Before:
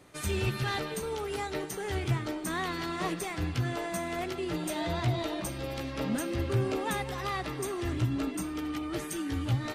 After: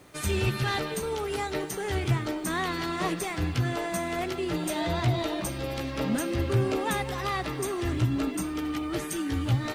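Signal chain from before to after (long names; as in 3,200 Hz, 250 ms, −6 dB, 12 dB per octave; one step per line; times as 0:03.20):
bit-depth reduction 12 bits, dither triangular
level +3.5 dB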